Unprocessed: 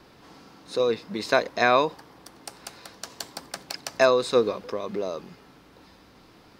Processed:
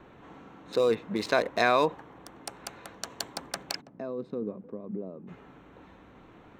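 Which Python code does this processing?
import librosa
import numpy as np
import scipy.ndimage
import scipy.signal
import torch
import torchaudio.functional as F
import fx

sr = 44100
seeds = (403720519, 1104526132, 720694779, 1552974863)

p1 = fx.wiener(x, sr, points=9)
p2 = fx.over_compress(p1, sr, threshold_db=-23.0, ratio=-0.5)
p3 = p1 + (p2 * librosa.db_to_amplitude(-1.0))
p4 = fx.bandpass_q(p3, sr, hz=200.0, q=1.9, at=(3.8, 5.27), fade=0.02)
y = p4 * librosa.db_to_amplitude(-6.0)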